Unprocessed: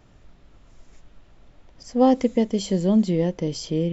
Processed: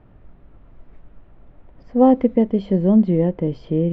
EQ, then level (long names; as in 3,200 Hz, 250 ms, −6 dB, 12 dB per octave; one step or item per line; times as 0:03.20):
high-frequency loss of the air 450 metres
high-shelf EQ 3,100 Hz −10.5 dB
+5.0 dB